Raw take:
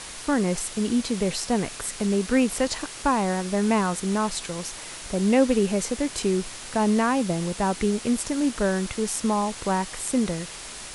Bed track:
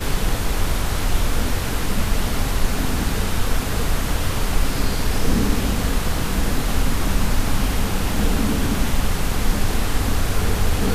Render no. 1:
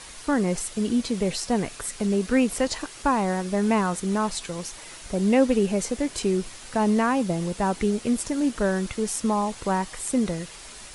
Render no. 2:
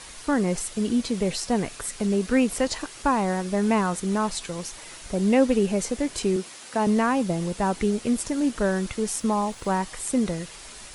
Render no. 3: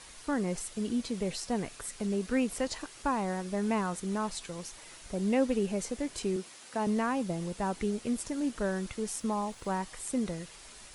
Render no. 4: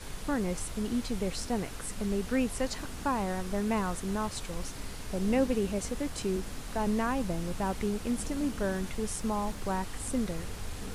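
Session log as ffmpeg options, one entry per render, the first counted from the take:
-af "afftdn=nr=6:nf=-39"
-filter_complex "[0:a]asettb=1/sr,asplit=3[a][b][c];[a]atrim=end=6.364[d];[b]atrim=start=6.36:end=6.87,asetpts=PTS-STARTPTS,afade=t=in:d=0.004:c=qsin,afade=t=out:st=0.506:d=0.004:c=qsin,highpass=210[e];[c]atrim=start=6.866[f];[d][e]acrossfade=d=0.004:c1=hsin:c2=qsin[g];[g][f]acrossfade=d=0.004:c1=qsin:c2=hsin,asettb=1/sr,asplit=3[h][i][j];[h]atrim=end=9.174[k];[i]atrim=start=9.17:end=9.79,asetpts=PTS-STARTPTS,afade=t=in:d=0.004:c=qsin,afade=t=out:st=0.616:d=0.004:c=qsin,aeval=exprs='sgn(val(0))*max(abs(val(0))-0.00178,0)':c=same[l];[j]atrim=start=9.786[m];[k][l]acrossfade=d=0.004:c1=hsin:c2=qsin[n];[n][m]acrossfade=d=0.004:c1=qsin:c2=hsin"
-af "volume=-8dB"
-filter_complex "[1:a]volume=-20dB[a];[0:a][a]amix=inputs=2:normalize=0"

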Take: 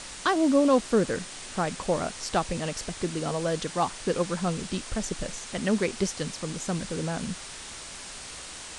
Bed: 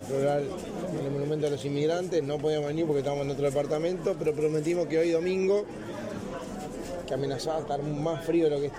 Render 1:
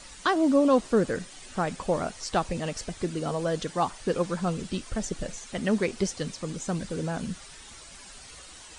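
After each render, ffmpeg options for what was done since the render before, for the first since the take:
-af "afftdn=nr=10:nf=-41"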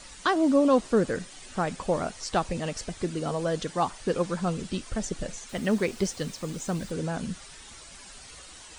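-filter_complex "[0:a]asettb=1/sr,asplit=3[a][b][c];[a]atrim=end=5.494[d];[b]atrim=start=5.49:end=6.91,asetpts=PTS-STARTPTS,afade=t=in:d=0.004:c=qsin,afade=t=out:st=1.416:d=0.004:c=qsin,acrusher=bits=7:mix=0:aa=0.5[e];[c]atrim=start=6.906[f];[d][e]acrossfade=d=0.004:c1=hsin:c2=qsin[g];[g][f]acrossfade=d=0.004:c1=qsin:c2=hsin"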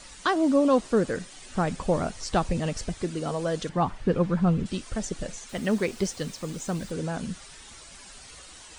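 -filter_complex "[0:a]asettb=1/sr,asplit=3[a][b][c];[a]atrim=end=1.534[d];[b]atrim=start=1.53:end=2.94,asetpts=PTS-STARTPTS,afade=t=in:d=0.004:c=qsin,afade=t=out:st=1.406:d=0.004:c=qsin,lowshelf=f=220:g=8[e];[c]atrim=start=2.936[f];[d][e]acrossfade=d=0.004:c1=hsin:c2=qsin[g];[g][f]acrossfade=d=0.004:c1=qsin:c2=hsin,asettb=1/sr,asplit=3[h][i][j];[h]atrim=end=3.694[k];[i]atrim=start=3.69:end=4.66,asetpts=PTS-STARTPTS,afade=t=in:d=0.004:c=qsin,afade=t=out:st=0.966:d=0.004:c=qsin,bass=f=250:g=10,treble=f=4k:g=-14[l];[j]atrim=start=4.656[m];[k][l]acrossfade=d=0.004:c1=hsin:c2=qsin[n];[n][m]acrossfade=d=0.004:c1=qsin:c2=hsin"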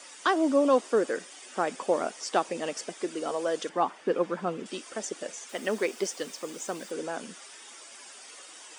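-af "highpass=f=300:w=0.5412,highpass=f=300:w=1.3066,bandreject=f=4.1k:w=8.3"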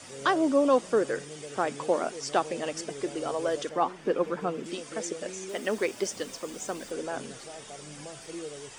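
-filter_complex "[1:a]volume=-15dB[a];[0:a][a]amix=inputs=2:normalize=0"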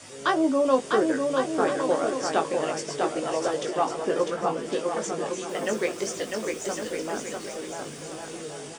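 -filter_complex "[0:a]asplit=2[a][b];[b]adelay=19,volume=-5.5dB[c];[a][c]amix=inputs=2:normalize=0,aecho=1:1:650|1105|1424|1646|1803:0.631|0.398|0.251|0.158|0.1"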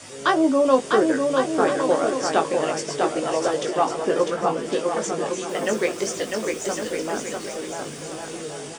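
-af "volume=4dB"

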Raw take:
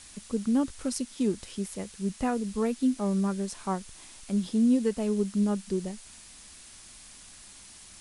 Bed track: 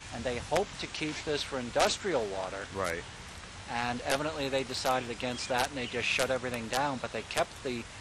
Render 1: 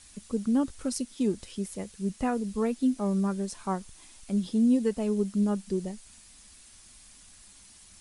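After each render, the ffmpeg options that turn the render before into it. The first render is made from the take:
-af "afftdn=nr=6:nf=-50"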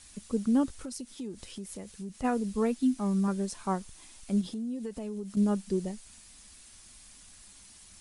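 -filter_complex "[0:a]asplit=3[a][b][c];[a]afade=t=out:st=0.71:d=0.02[d];[b]acompressor=threshold=-37dB:ratio=4:attack=3.2:release=140:knee=1:detection=peak,afade=t=in:st=0.71:d=0.02,afade=t=out:st=2.23:d=0.02[e];[c]afade=t=in:st=2.23:d=0.02[f];[d][e][f]amix=inputs=3:normalize=0,asettb=1/sr,asplit=3[g][h][i];[g]atrim=end=2.774[j];[h]atrim=start=2.77:end=3.28,asetpts=PTS-STARTPTS,afade=t=in:d=0.004:c=qsin,afade=t=out:st=0.506:d=0.004:c=qsin,equalizer=f=510:w=3.2:g=-15[k];[i]atrim=start=3.276[l];[j][k]acrossfade=d=0.004:c1=hsin:c2=qsin[m];[m][l]acrossfade=d=0.004:c1=qsin:c2=hsin,asettb=1/sr,asplit=3[n][o][p];[n]atrim=end=4.414[q];[o]atrim=start=4.41:end=5.37,asetpts=PTS-STARTPTS,afade=t=in:d=0.004:c=qsin,afade=t=out:st=0.956:d=0.004:c=qsin,acompressor=threshold=-34dB:ratio=5:attack=3.2:release=140:knee=1:detection=peak[r];[p]atrim=start=5.366[s];[q][r]acrossfade=d=0.004:c1=hsin:c2=qsin[t];[t][s]acrossfade=d=0.004:c1=qsin:c2=hsin"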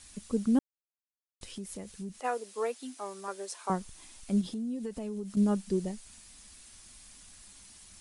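-filter_complex "[0:a]asettb=1/sr,asplit=3[a][b][c];[a]atrim=end=2.204[d];[b]atrim=start=2.2:end=3.7,asetpts=PTS-STARTPTS,afade=t=in:d=0.004:c=qsin,afade=t=out:st=1.496:d=0.004:c=qsin,highpass=f=420:w=0.5412,highpass=f=420:w=1.3066[e];[c]atrim=start=3.696[f];[d][e]acrossfade=d=0.004:c1=hsin:c2=qsin[g];[g][f]acrossfade=d=0.004:c1=qsin:c2=hsin,asplit=3[h][i][j];[h]atrim=end=0.59,asetpts=PTS-STARTPTS,afade=t=out:st=0.586:d=0.004:c=hsin[k];[i]atrim=start=0.59:end=1.41,asetpts=PTS-STARTPTS,volume=0[l];[j]atrim=start=1.41,asetpts=PTS-STARTPTS,afade=t=in:d=0.004:c=hsin[m];[k][l][m]concat=n=3:v=0:a=1"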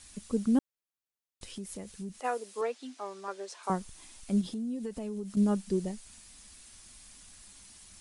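-filter_complex "[0:a]asettb=1/sr,asplit=3[a][b][c];[a]atrim=end=2.614[d];[b]atrim=start=2.61:end=3.63,asetpts=PTS-STARTPTS,afade=t=in:d=0.004:c=qsin,afade=t=out:st=1.016:d=0.004:c=qsin,highpass=200,lowpass=5.6k[e];[c]atrim=start=3.626[f];[d][e]acrossfade=d=0.004:c1=hsin:c2=qsin[g];[g][f]acrossfade=d=0.004:c1=qsin:c2=hsin"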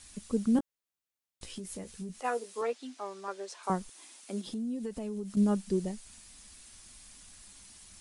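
-filter_complex "[0:a]asettb=1/sr,asplit=3[a][b][c];[a]atrim=end=0.544[d];[b]atrim=start=0.54:end=2.73,asetpts=PTS-STARTPTS,afade=t=in:d=0.004:c=qsin,afade=t=out:st=2.186:d=0.004:c=qsin,asplit=2[e][f];[f]adelay=17,volume=-8dB[g];[e][g]amix=inputs=2:normalize=0,atrim=end_sample=96579[h];[c]atrim=start=2.726[i];[d][h]acrossfade=d=0.004:c1=hsin:c2=qsin[j];[j][i]acrossfade=d=0.004:c1=qsin:c2=hsin,asettb=1/sr,asplit=3[k][l][m];[k]atrim=end=3.894[n];[l]atrim=start=3.89:end=4.47,asetpts=PTS-STARTPTS,afade=t=in:d=0.004:c=qsin,afade=t=out:st=0.576:d=0.004:c=qsin,highpass=f=270:w=0.5412,highpass=f=270:w=1.3066[o];[m]atrim=start=4.466[p];[n][o]acrossfade=d=0.004:c1=hsin:c2=qsin[q];[q][p]acrossfade=d=0.004:c1=qsin:c2=hsin"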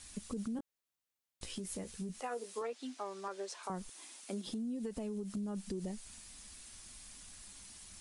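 -af "alimiter=level_in=3.5dB:limit=-24dB:level=0:latency=1:release=42,volume=-3.5dB,acompressor=threshold=-36dB:ratio=6"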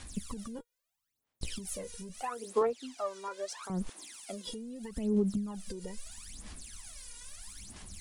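-af "aphaser=in_gain=1:out_gain=1:delay=2.1:decay=0.79:speed=0.77:type=sinusoidal"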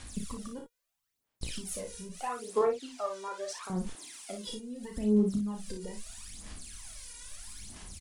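-af "aecho=1:1:33|57:0.473|0.447"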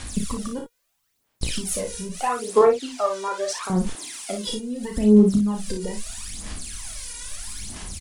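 -af "volume=11.5dB"

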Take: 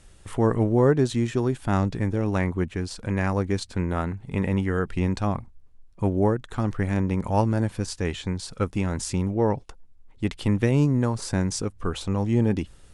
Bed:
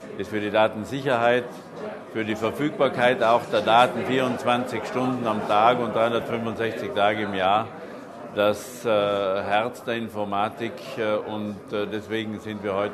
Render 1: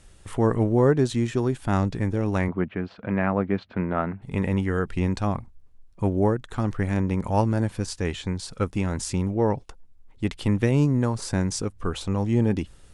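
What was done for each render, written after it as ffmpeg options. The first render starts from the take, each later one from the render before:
-filter_complex "[0:a]asettb=1/sr,asplit=3[a][b][c];[a]atrim=end=2.484[d];[b]atrim=start=2.48:end=4.22,asetpts=PTS-STARTPTS,afade=t=in:d=0.004:c=qsin,afade=t=out:st=1.736:d=0.004:c=qsin,highpass=130,equalizer=f=200:t=q:w=4:g=4,equalizer=f=650:t=q:w=4:g=6,equalizer=f=1.3k:t=q:w=4:g=4,lowpass=f=2.9k:w=0.5412,lowpass=f=2.9k:w=1.3066[e];[c]atrim=start=4.216[f];[d][e]acrossfade=d=0.004:c1=hsin:c2=qsin[g];[g][f]acrossfade=d=0.004:c1=qsin:c2=hsin"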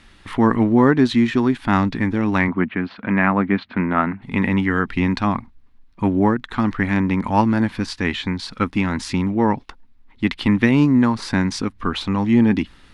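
-af "equalizer=f=125:t=o:w=1:g=-3,equalizer=f=250:t=o:w=1:g=12,equalizer=f=500:t=o:w=1:g=-5,equalizer=f=1k:t=o:w=1:g=8,equalizer=f=2k:t=o:w=1:g=10,equalizer=f=4k:t=o:w=1:g=9,equalizer=f=8k:t=o:w=1:g=-8"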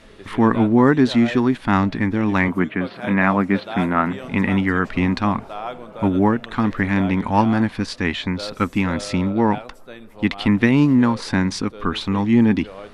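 -filter_complex "[1:a]volume=-12dB[a];[0:a][a]amix=inputs=2:normalize=0"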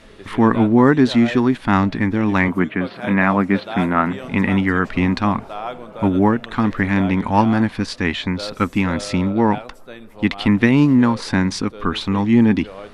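-af "volume=1.5dB,alimiter=limit=-1dB:level=0:latency=1"

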